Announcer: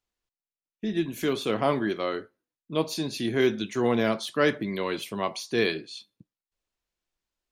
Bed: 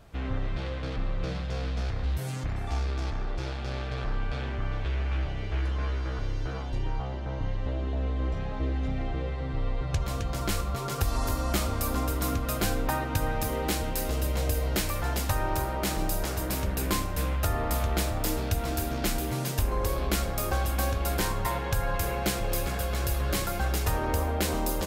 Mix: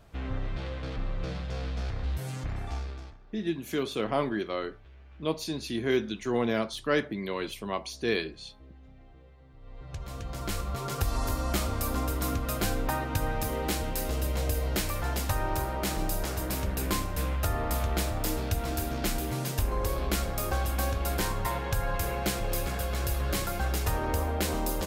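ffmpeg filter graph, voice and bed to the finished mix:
-filter_complex "[0:a]adelay=2500,volume=-3.5dB[a];[1:a]volume=19dB,afade=t=out:st=2.6:d=0.58:silence=0.0944061,afade=t=in:st=9.6:d=1.26:silence=0.0841395[b];[a][b]amix=inputs=2:normalize=0"

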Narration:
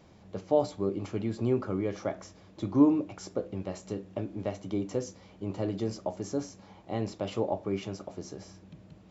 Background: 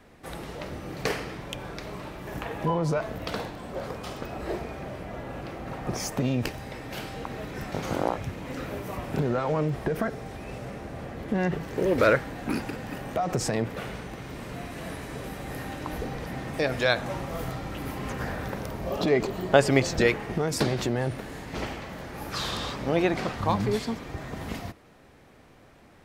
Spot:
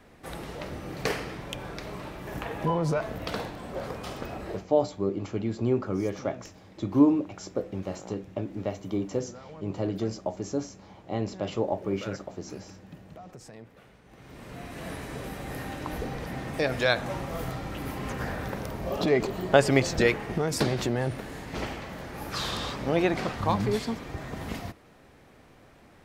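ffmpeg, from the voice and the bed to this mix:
-filter_complex "[0:a]adelay=4200,volume=2dB[a];[1:a]volume=18.5dB,afade=t=out:st=4.32:d=0.35:silence=0.112202,afade=t=in:st=14.03:d=0.9:silence=0.112202[b];[a][b]amix=inputs=2:normalize=0"

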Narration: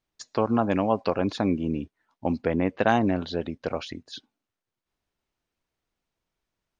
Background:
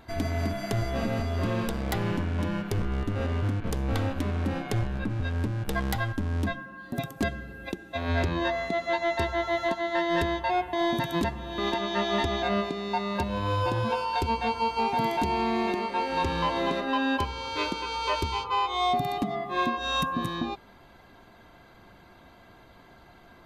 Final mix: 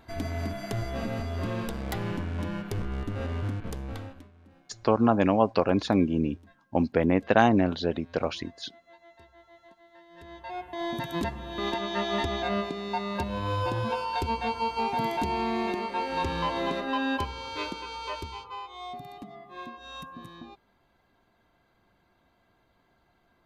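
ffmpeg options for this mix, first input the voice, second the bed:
-filter_complex "[0:a]adelay=4500,volume=1.5dB[a];[1:a]volume=22dB,afade=t=out:st=3.52:d=0.77:silence=0.0630957,afade=t=in:st=10.16:d=1.19:silence=0.0530884,afade=t=out:st=17.15:d=1.53:silence=0.237137[b];[a][b]amix=inputs=2:normalize=0"

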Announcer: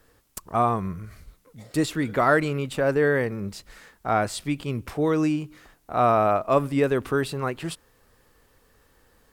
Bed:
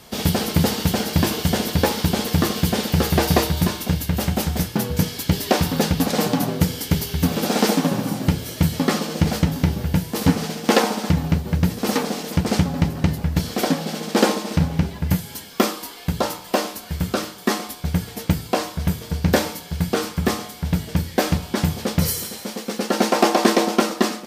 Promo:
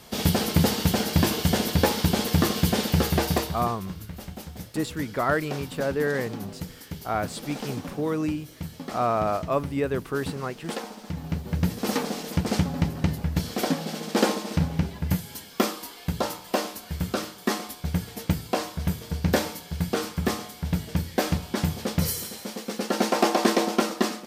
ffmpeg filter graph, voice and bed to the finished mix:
-filter_complex "[0:a]adelay=3000,volume=-4.5dB[a];[1:a]volume=9.5dB,afade=t=out:st=2.89:d=0.87:silence=0.188365,afade=t=in:st=11.06:d=0.6:silence=0.251189[b];[a][b]amix=inputs=2:normalize=0"

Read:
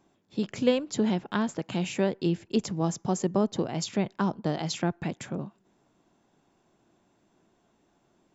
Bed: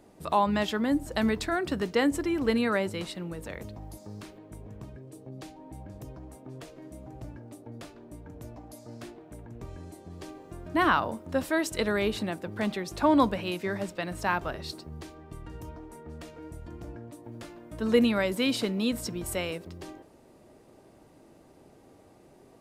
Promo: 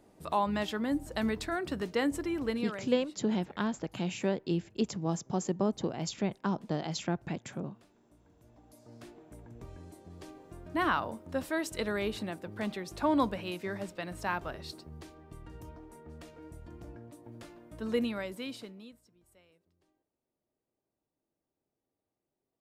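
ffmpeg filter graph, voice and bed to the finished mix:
-filter_complex "[0:a]adelay=2250,volume=-4.5dB[a];[1:a]volume=8.5dB,afade=t=out:st=2.38:d=0.47:silence=0.199526,afade=t=in:st=8.43:d=0.77:silence=0.211349,afade=t=out:st=17.56:d=1.44:silence=0.0446684[b];[a][b]amix=inputs=2:normalize=0"

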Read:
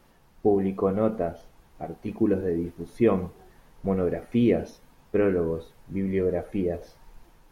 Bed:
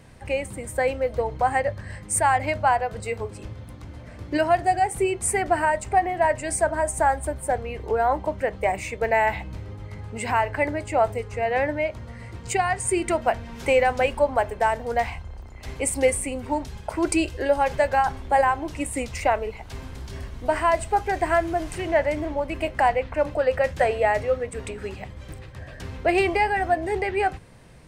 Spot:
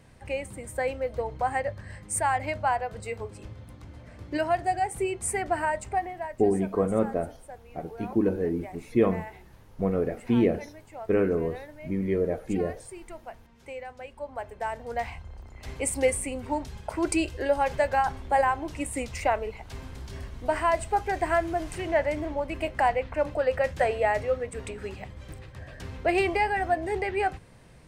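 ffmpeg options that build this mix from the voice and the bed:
-filter_complex "[0:a]adelay=5950,volume=-1dB[a];[1:a]volume=11dB,afade=t=out:st=5.83:d=0.52:silence=0.188365,afade=t=in:st=14.11:d=1.48:silence=0.149624[b];[a][b]amix=inputs=2:normalize=0"

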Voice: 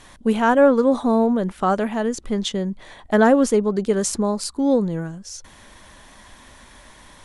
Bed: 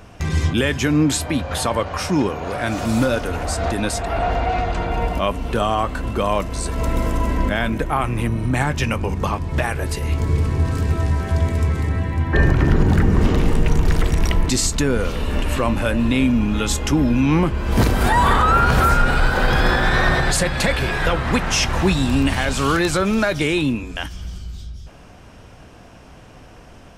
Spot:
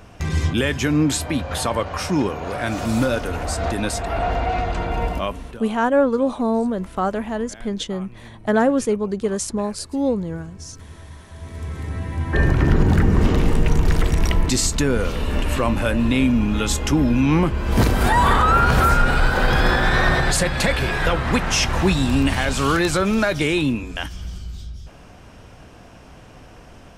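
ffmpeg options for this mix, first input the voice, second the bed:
-filter_complex "[0:a]adelay=5350,volume=-2.5dB[a];[1:a]volume=19.5dB,afade=t=out:st=5.09:d=0.52:silence=0.1,afade=t=in:st=11.35:d=1.34:silence=0.0891251[b];[a][b]amix=inputs=2:normalize=0"

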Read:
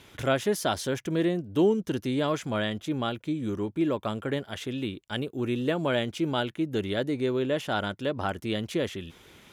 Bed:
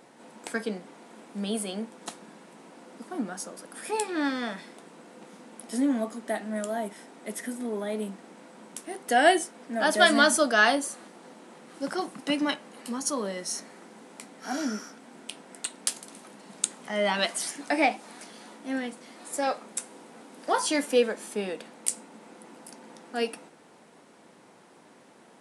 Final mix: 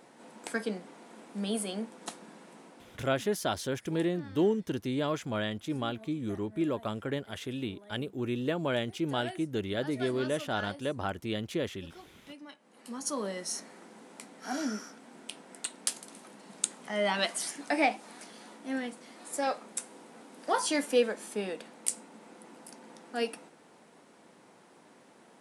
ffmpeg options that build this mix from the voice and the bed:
-filter_complex "[0:a]adelay=2800,volume=-4dB[a];[1:a]volume=16.5dB,afade=t=out:st=2.57:d=0.61:silence=0.105925,afade=t=in:st=12.58:d=0.66:silence=0.11885[b];[a][b]amix=inputs=2:normalize=0"

